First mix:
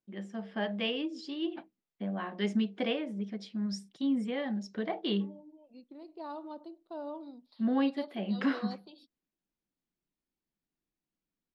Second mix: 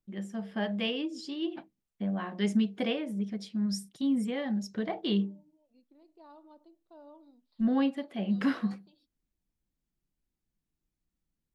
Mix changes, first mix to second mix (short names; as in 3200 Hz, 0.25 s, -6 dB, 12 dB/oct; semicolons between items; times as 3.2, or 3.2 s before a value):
first voice: remove BPF 220–4900 Hz; second voice -12.0 dB